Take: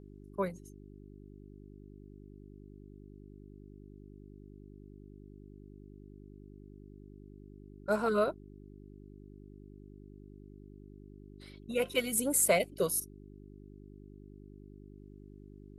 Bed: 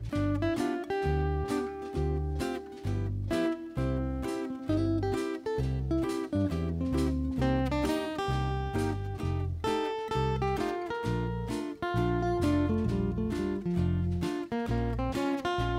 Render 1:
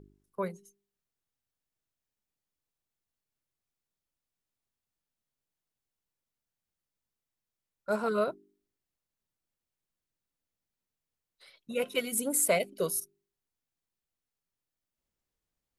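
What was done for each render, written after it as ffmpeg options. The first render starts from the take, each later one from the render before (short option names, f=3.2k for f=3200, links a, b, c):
-af "bandreject=f=50:t=h:w=4,bandreject=f=100:t=h:w=4,bandreject=f=150:t=h:w=4,bandreject=f=200:t=h:w=4,bandreject=f=250:t=h:w=4,bandreject=f=300:t=h:w=4,bandreject=f=350:t=h:w=4,bandreject=f=400:t=h:w=4"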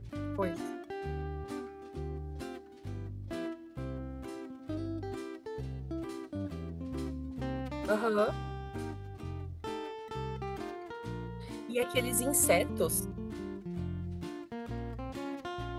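-filter_complex "[1:a]volume=-9dB[a];[0:a][a]amix=inputs=2:normalize=0"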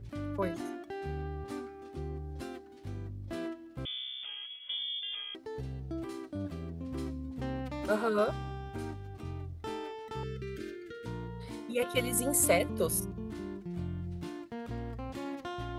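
-filter_complex "[0:a]asettb=1/sr,asplit=3[a][b][c];[a]atrim=end=3.854[d];[b]atrim=start=3.85:end=5.35,asetpts=PTS-STARTPTS,afade=t=in:d=0.004:c=qsin,afade=t=out:st=1.496:d=0.004:c=qsin,lowpass=f=3.1k:t=q:w=0.5098,lowpass=f=3.1k:t=q:w=0.6013,lowpass=f=3.1k:t=q:w=0.9,lowpass=f=3.1k:t=q:w=2.563,afreqshift=-3600[e];[c]atrim=start=5.346[f];[d][e]acrossfade=d=0.004:c1=hsin:c2=qsin[g];[g][f]acrossfade=d=0.004:c1=qsin:c2=hsin,asettb=1/sr,asplit=3[h][i][j];[h]atrim=end=10.234[k];[i]atrim=start=10.23:end=11.06,asetpts=PTS-STARTPTS,afade=t=in:d=0.004:c=qsin,afade=t=out:st=0.826:d=0.004:c=qsin,asuperstop=centerf=880:order=12:qfactor=1.2[l];[j]atrim=start=11.056[m];[k][l]acrossfade=d=0.004:c1=hsin:c2=qsin[n];[n][m]acrossfade=d=0.004:c1=qsin:c2=hsin"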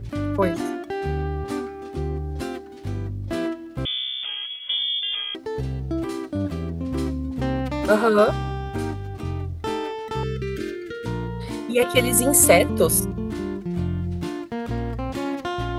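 -af "volume=12dB,alimiter=limit=-3dB:level=0:latency=1"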